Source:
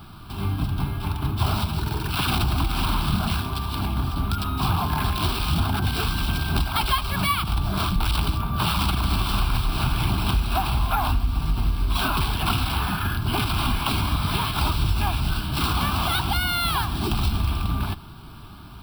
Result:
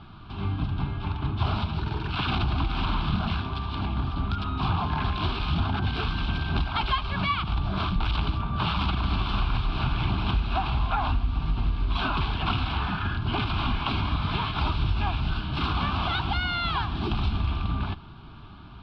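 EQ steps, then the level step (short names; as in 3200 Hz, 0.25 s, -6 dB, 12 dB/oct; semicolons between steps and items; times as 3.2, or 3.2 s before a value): LPF 3900 Hz 24 dB/oct; -3.0 dB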